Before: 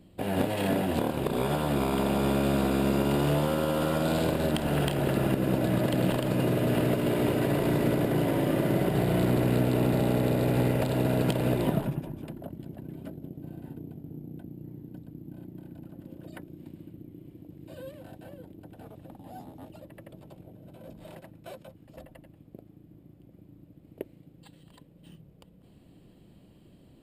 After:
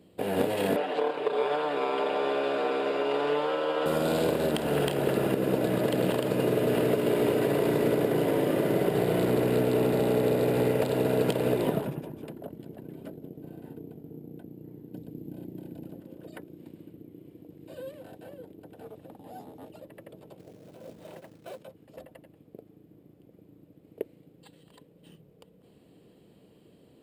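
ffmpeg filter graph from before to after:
ffmpeg -i in.wav -filter_complex "[0:a]asettb=1/sr,asplit=3[link_01][link_02][link_03];[link_01]atrim=end=0.764[link_04];[link_02]atrim=start=0.76:end=3.86,asetpts=PTS-STARTPTS,afade=type=in:duration=0.004:curve=qsin,afade=type=out:start_time=3.096:duration=0.004:curve=qsin,highpass=500,lowpass=3400,aecho=1:1:6.8:0.78,atrim=end_sample=136710[link_05];[link_03]atrim=start=3.856[link_06];[link_04][link_05]acrossfade=duration=0.004:curve1=hsin:curve2=qsin[link_07];[link_07][link_06]acrossfade=duration=0.004:curve1=qsin:curve2=hsin,asettb=1/sr,asplit=3[link_08][link_09][link_10];[link_08]atrim=end=14.934[link_11];[link_09]atrim=start=14.93:end=15.99,asetpts=PTS-STARTPTS,afade=type=in:duration=0.004:curve=qsin,afade=type=out:start_time=1.056:duration=0.004:curve=qsin,equalizer=frequency=1300:width=1.3:gain=-7.5,acontrast=28[link_12];[link_10]atrim=start=15.986[link_13];[link_11][link_12]acrossfade=duration=0.004:curve1=hsin:curve2=qsin[link_14];[link_14][link_13]acrossfade=duration=0.004:curve1=qsin:curve2=hsin,asettb=1/sr,asplit=3[link_15][link_16][link_17];[link_15]atrim=end=20.394[link_18];[link_16]atrim=start=20.39:end=21.61,asetpts=PTS-STARTPTS,afade=type=in:duration=0.004:curve=qsin,afade=type=out:start_time=1.216:duration=0.004:curve=qsin,highshelf=frequency=5100:gain=-5,acrusher=bits=4:mode=log:mix=0:aa=0.000001[link_19];[link_17]atrim=start=21.606[link_20];[link_18][link_19]acrossfade=duration=0.004:curve1=hsin:curve2=qsin[link_21];[link_21][link_20]acrossfade=duration=0.004:curve1=qsin:curve2=hsin,highpass=frequency=210:poles=1,equalizer=frequency=450:width=4.4:gain=9.5" out.wav

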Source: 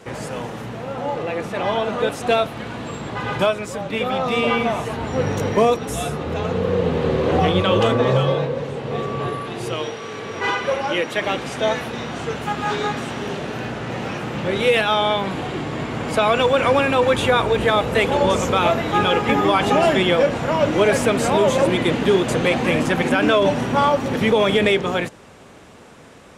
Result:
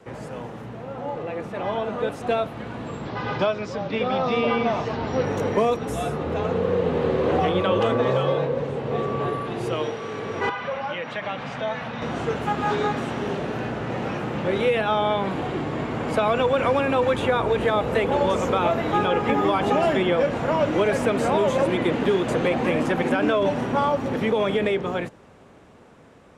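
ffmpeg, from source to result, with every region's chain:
ffmpeg -i in.wav -filter_complex "[0:a]asettb=1/sr,asplit=3[link_01][link_02][link_03];[link_01]atrim=end=3.054[link_04];[link_02]atrim=start=3.05:end=5.25,asetpts=PTS-STARTPTS,afade=type=in:duration=0.004:curve=qsin,afade=type=out:start_time=2.196:duration=0.004:curve=qsin,highpass=59,highshelf=frequency=7300:width_type=q:width=3:gain=-13.5[link_05];[link_03]atrim=start=5.246[link_06];[link_04][link_05]acrossfade=duration=0.004:curve1=hsin:curve2=qsin[link_07];[link_07][link_06]acrossfade=duration=0.004:curve1=qsin:curve2=hsin,asettb=1/sr,asplit=3[link_08][link_09][link_10];[link_08]atrim=end=10.494[link_11];[link_09]atrim=start=10.49:end=12.02,asetpts=PTS-STARTPTS,afade=type=in:duration=0.004:curve=qsin,afade=type=out:start_time=1.526:duration=0.004:curve=qsin,equalizer=frequency=360:width_type=o:width=0.78:gain=-14,acompressor=threshold=-27dB:ratio=2:attack=3.2:release=140:knee=1:detection=peak,highpass=120,lowpass=4400[link_12];[link_10]atrim=start=12.016[link_13];[link_11][link_12]acrossfade=duration=0.004:curve1=hsin:curve2=qsin[link_14];[link_14][link_13]acrossfade=duration=0.004:curve1=qsin:curve2=hsin,dynaudnorm=framelen=520:gausssize=11:maxgain=11.5dB,highshelf=frequency=2300:gain=-9.5,acrossover=split=230|1200|2800[link_15][link_16][link_17][link_18];[link_15]acompressor=threshold=-26dB:ratio=4[link_19];[link_16]acompressor=threshold=-14dB:ratio=4[link_20];[link_17]acompressor=threshold=-25dB:ratio=4[link_21];[link_18]acompressor=threshold=-33dB:ratio=4[link_22];[link_19][link_20][link_21][link_22]amix=inputs=4:normalize=0,volume=-5dB" out.wav

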